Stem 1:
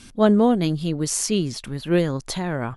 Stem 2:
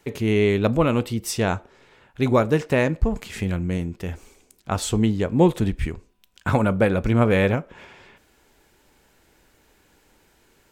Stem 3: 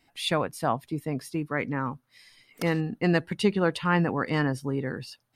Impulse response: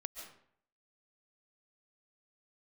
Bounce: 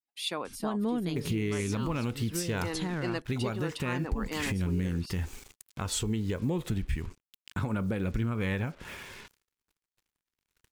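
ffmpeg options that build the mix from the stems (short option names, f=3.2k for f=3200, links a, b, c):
-filter_complex "[0:a]adelay=450,volume=-5.5dB[a];[1:a]aphaser=in_gain=1:out_gain=1:delay=2.3:decay=0.28:speed=0.3:type=triangular,acrusher=bits=7:mix=0:aa=0.5,adelay=1100,volume=3dB[b];[2:a]highpass=350,equalizer=f=1.8k:t=o:w=0.94:g=-7,volume=-2dB[c];[a][b]amix=inputs=2:normalize=0,acompressor=threshold=-24dB:ratio=3,volume=0dB[d];[c][d]amix=inputs=2:normalize=0,agate=range=-33dB:threshold=-55dB:ratio=3:detection=peak,equalizer=f=630:t=o:w=0.96:g=-7.5,alimiter=limit=-21dB:level=0:latency=1:release=210"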